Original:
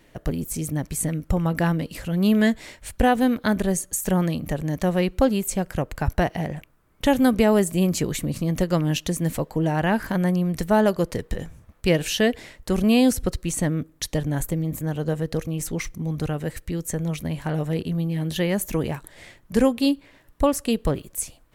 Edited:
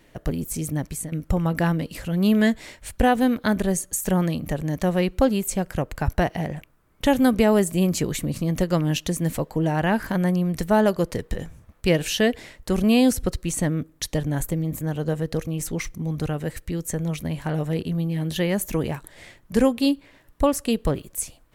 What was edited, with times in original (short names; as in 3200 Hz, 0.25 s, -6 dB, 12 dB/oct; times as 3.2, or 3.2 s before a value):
0.85–1.12 fade out, to -13 dB